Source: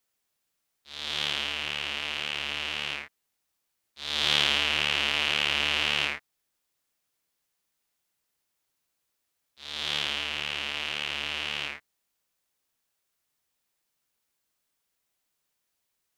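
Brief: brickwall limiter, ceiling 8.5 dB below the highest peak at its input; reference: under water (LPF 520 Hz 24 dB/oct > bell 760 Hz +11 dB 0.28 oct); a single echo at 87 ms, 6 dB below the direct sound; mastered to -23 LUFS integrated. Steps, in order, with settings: limiter -14 dBFS; LPF 520 Hz 24 dB/oct; bell 760 Hz +11 dB 0.28 oct; echo 87 ms -6 dB; gain +24.5 dB

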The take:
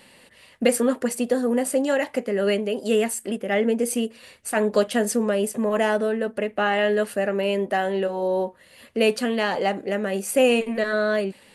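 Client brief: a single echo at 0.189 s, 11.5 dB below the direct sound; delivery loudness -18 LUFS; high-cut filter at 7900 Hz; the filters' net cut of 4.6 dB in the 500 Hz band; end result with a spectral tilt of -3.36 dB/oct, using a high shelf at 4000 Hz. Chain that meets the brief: LPF 7900 Hz; bell 500 Hz -5.5 dB; high shelf 4000 Hz -3 dB; echo 0.189 s -11.5 dB; gain +8 dB

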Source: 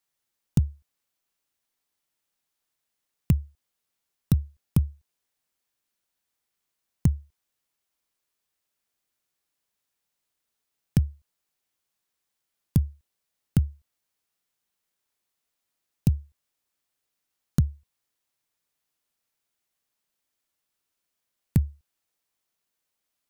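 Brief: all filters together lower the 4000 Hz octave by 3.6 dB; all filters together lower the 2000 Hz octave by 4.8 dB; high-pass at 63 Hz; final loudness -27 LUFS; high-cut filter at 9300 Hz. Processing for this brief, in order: HPF 63 Hz; LPF 9300 Hz; bell 2000 Hz -5.5 dB; bell 4000 Hz -3 dB; gain +2 dB

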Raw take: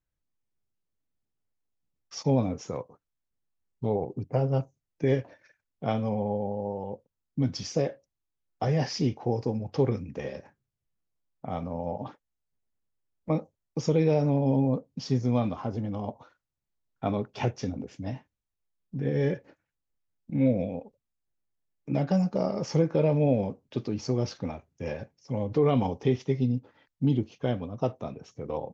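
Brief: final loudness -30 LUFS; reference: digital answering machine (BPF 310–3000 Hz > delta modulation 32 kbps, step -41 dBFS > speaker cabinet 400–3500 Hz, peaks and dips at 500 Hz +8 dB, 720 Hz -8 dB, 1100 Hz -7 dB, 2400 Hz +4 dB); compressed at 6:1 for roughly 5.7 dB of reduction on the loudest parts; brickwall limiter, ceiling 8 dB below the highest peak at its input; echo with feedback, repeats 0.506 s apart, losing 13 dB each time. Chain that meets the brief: compressor 6:1, threshold -25 dBFS; limiter -24 dBFS; BPF 310–3000 Hz; feedback echo 0.506 s, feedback 22%, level -13 dB; delta modulation 32 kbps, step -41 dBFS; speaker cabinet 400–3500 Hz, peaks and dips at 500 Hz +8 dB, 720 Hz -8 dB, 1100 Hz -7 dB, 2400 Hz +4 dB; gain +9.5 dB

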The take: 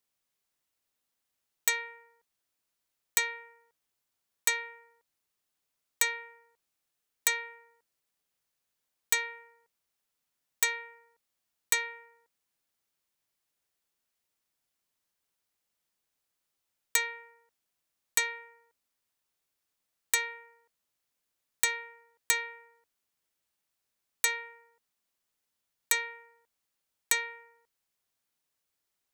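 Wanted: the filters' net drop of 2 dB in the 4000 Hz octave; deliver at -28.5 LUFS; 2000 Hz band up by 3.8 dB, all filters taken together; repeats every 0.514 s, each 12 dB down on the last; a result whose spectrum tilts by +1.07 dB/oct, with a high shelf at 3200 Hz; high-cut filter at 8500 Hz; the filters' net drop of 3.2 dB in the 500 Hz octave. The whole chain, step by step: LPF 8500 Hz; bell 500 Hz -3.5 dB; bell 2000 Hz +4.5 dB; high shelf 3200 Hz +4 dB; bell 4000 Hz -6 dB; feedback echo 0.514 s, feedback 25%, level -12 dB; gain +3 dB

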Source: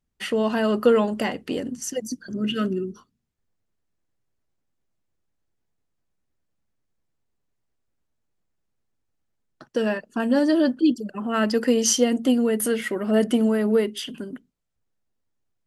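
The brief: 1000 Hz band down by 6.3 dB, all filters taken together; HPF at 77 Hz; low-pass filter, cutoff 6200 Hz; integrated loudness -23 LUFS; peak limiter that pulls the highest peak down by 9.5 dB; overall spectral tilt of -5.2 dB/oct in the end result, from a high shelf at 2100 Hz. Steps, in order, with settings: HPF 77 Hz; LPF 6200 Hz; bell 1000 Hz -7.5 dB; high shelf 2100 Hz -6.5 dB; gain +4 dB; limiter -13 dBFS

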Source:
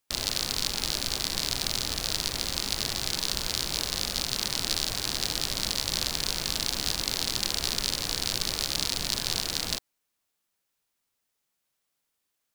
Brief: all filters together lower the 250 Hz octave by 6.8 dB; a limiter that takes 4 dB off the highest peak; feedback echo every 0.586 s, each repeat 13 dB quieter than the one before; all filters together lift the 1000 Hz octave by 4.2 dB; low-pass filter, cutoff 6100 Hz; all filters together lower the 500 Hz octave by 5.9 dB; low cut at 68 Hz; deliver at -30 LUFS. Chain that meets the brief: HPF 68 Hz; LPF 6100 Hz; bell 250 Hz -7.5 dB; bell 500 Hz -8.5 dB; bell 1000 Hz +8 dB; limiter -12 dBFS; feedback echo 0.586 s, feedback 22%, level -13 dB; gain +0.5 dB

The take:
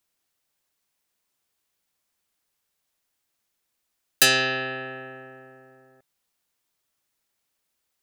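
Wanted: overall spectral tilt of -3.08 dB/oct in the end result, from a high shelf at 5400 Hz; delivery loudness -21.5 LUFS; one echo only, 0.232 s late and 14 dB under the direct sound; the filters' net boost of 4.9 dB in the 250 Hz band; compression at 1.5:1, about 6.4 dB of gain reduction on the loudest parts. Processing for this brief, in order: bell 250 Hz +5.5 dB; high shelf 5400 Hz -7.5 dB; compressor 1.5:1, threshold -33 dBFS; echo 0.232 s -14 dB; gain +8 dB

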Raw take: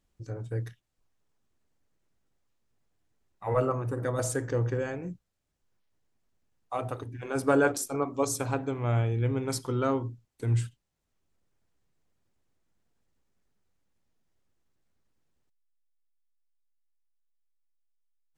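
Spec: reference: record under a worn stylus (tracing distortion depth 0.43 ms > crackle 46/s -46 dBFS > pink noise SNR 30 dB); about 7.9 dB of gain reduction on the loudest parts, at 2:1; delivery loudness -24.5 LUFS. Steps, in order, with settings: compressor 2:1, threshold -33 dBFS; tracing distortion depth 0.43 ms; crackle 46/s -46 dBFS; pink noise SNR 30 dB; gain +11 dB

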